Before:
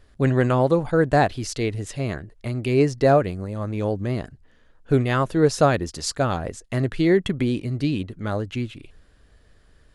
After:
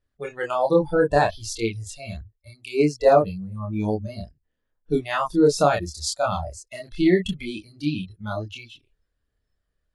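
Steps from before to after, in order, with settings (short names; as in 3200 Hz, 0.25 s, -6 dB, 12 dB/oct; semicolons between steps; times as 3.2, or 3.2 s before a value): spectral noise reduction 23 dB; chorus voices 2, 0.64 Hz, delay 27 ms, depth 1.2 ms; 2.21–3.09 three-band expander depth 40%; gain +3.5 dB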